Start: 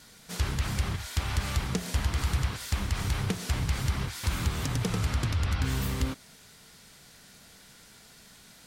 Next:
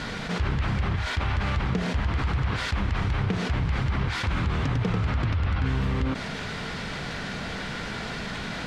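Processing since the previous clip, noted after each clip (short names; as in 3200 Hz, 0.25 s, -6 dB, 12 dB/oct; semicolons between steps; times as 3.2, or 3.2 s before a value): LPF 2600 Hz 12 dB/oct; fast leveller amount 70%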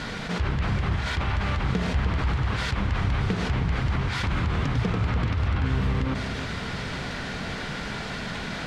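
echo with dull and thin repeats by turns 0.312 s, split 1100 Hz, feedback 70%, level -8 dB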